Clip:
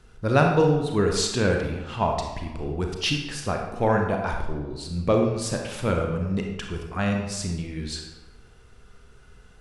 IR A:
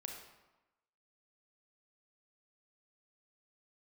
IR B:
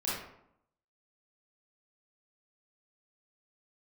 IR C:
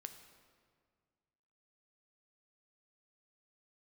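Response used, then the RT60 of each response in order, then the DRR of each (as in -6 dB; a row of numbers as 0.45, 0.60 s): A; 1.0, 0.75, 1.9 s; 1.5, -8.5, 7.0 dB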